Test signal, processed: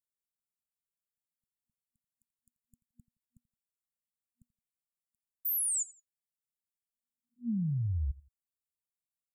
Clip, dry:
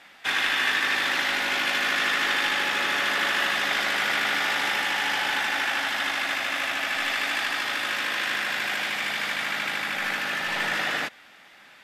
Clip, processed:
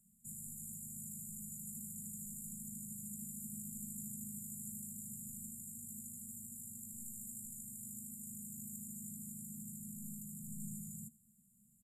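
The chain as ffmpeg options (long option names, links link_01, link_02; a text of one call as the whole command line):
ffmpeg -i in.wav -filter_complex "[0:a]afftfilt=real='re*(1-between(b*sr/4096,240,6900))':imag='im*(1-between(b*sr/4096,240,6900))':win_size=4096:overlap=0.75,asplit=2[link_01][link_02];[link_02]aecho=0:1:85|170:0.0891|0.0267[link_03];[link_01][link_03]amix=inputs=2:normalize=0,volume=-2dB" out.wav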